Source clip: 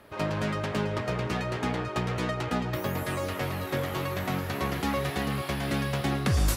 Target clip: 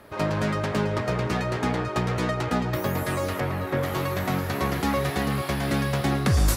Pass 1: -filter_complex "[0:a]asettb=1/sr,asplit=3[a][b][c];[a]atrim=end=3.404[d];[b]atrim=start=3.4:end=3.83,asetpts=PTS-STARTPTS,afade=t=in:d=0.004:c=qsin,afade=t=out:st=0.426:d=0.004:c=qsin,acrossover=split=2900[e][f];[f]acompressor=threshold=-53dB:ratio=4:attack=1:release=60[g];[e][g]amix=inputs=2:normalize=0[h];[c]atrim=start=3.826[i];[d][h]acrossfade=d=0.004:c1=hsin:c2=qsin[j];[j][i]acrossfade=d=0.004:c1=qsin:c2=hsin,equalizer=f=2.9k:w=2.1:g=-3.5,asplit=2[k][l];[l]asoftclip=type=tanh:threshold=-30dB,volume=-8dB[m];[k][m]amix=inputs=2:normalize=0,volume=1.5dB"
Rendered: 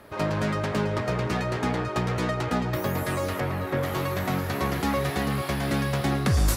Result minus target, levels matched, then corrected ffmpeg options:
soft clip: distortion +12 dB
-filter_complex "[0:a]asettb=1/sr,asplit=3[a][b][c];[a]atrim=end=3.404[d];[b]atrim=start=3.4:end=3.83,asetpts=PTS-STARTPTS,afade=t=in:d=0.004:c=qsin,afade=t=out:st=0.426:d=0.004:c=qsin,acrossover=split=2900[e][f];[f]acompressor=threshold=-53dB:ratio=4:attack=1:release=60[g];[e][g]amix=inputs=2:normalize=0[h];[c]atrim=start=3.826[i];[d][h]acrossfade=d=0.004:c1=hsin:c2=qsin[j];[j][i]acrossfade=d=0.004:c1=qsin:c2=hsin,equalizer=f=2.9k:w=2.1:g=-3.5,asplit=2[k][l];[l]asoftclip=type=tanh:threshold=-19dB,volume=-8dB[m];[k][m]amix=inputs=2:normalize=0,volume=1.5dB"

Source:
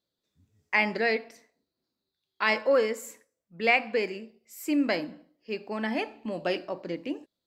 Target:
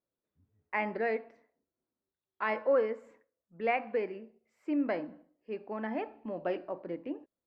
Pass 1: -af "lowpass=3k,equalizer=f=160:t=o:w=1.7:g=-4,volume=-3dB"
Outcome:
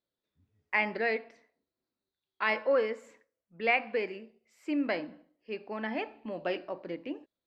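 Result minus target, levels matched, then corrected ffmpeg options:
4000 Hz band +8.5 dB
-af "lowpass=1.4k,equalizer=f=160:t=o:w=1.7:g=-4,volume=-3dB"

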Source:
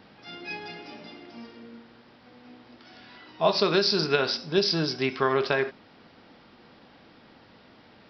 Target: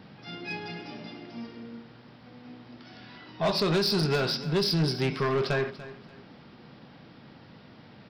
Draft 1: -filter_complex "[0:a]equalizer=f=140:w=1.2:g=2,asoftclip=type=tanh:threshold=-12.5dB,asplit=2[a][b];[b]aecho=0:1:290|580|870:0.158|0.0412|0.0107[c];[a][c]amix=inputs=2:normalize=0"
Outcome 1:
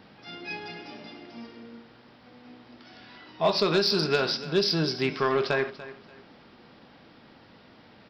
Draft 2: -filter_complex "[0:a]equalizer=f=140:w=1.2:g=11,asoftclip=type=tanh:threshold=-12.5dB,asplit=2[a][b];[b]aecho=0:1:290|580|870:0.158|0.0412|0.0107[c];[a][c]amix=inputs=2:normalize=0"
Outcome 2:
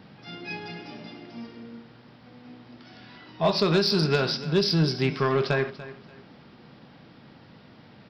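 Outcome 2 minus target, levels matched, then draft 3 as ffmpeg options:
soft clip: distortion -9 dB
-filter_complex "[0:a]equalizer=f=140:w=1.2:g=11,asoftclip=type=tanh:threshold=-20.5dB,asplit=2[a][b];[b]aecho=0:1:290|580|870:0.158|0.0412|0.0107[c];[a][c]amix=inputs=2:normalize=0"

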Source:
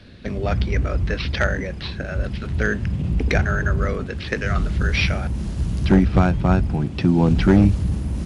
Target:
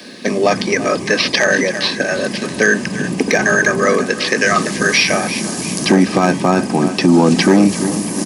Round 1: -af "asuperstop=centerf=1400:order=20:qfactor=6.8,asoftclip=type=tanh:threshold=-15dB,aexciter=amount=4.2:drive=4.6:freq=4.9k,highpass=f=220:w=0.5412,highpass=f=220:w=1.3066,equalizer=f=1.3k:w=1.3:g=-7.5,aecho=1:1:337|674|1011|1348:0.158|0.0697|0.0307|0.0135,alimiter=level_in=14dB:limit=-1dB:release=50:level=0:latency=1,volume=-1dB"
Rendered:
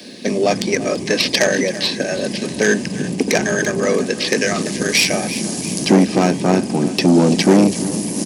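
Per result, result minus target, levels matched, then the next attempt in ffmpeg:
soft clip: distortion +14 dB; 1000 Hz band -3.0 dB
-af "asuperstop=centerf=1400:order=20:qfactor=6.8,asoftclip=type=tanh:threshold=-4.5dB,aexciter=amount=4.2:drive=4.6:freq=4.9k,highpass=f=220:w=0.5412,highpass=f=220:w=1.3066,equalizer=f=1.3k:w=1.3:g=-7.5,aecho=1:1:337|674|1011|1348:0.158|0.0697|0.0307|0.0135,alimiter=level_in=14dB:limit=-1dB:release=50:level=0:latency=1,volume=-1dB"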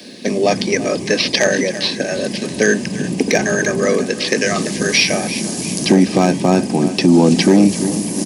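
1000 Hz band -3.5 dB
-af "asuperstop=centerf=1400:order=20:qfactor=6.8,asoftclip=type=tanh:threshold=-4.5dB,aexciter=amount=4.2:drive=4.6:freq=4.9k,highpass=f=220:w=0.5412,highpass=f=220:w=1.3066,equalizer=f=1.3k:w=1.3:g=3,aecho=1:1:337|674|1011|1348:0.158|0.0697|0.0307|0.0135,alimiter=level_in=14dB:limit=-1dB:release=50:level=0:latency=1,volume=-1dB"

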